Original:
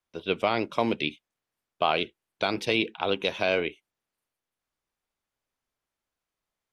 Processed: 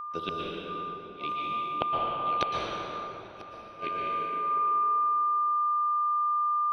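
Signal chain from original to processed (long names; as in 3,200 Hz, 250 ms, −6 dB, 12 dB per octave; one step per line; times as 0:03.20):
feedback delay that plays each chunk backwards 102 ms, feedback 51%, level −11 dB
high-shelf EQ 6,500 Hz +4.5 dB
steady tone 1,200 Hz −35 dBFS
automatic gain control gain up to 5 dB
gate with flip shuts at −18 dBFS, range −40 dB
dense smooth reverb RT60 3.6 s, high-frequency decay 0.55×, pre-delay 105 ms, DRR −4 dB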